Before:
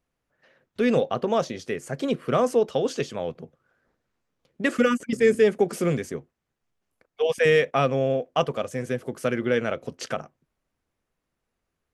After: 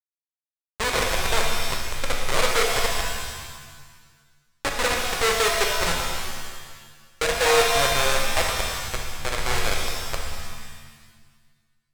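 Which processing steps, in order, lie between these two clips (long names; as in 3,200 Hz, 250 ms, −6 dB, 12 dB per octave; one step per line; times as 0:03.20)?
comparator with hysteresis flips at −18 dBFS
graphic EQ with 10 bands 125 Hz −8 dB, 250 Hz −10 dB, 500 Hz +5 dB, 1,000 Hz +6 dB, 2,000 Hz +9 dB, 4,000 Hz +7 dB, 8,000 Hz +10 dB
reverb with rising layers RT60 1.4 s, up +7 semitones, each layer −2 dB, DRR 1 dB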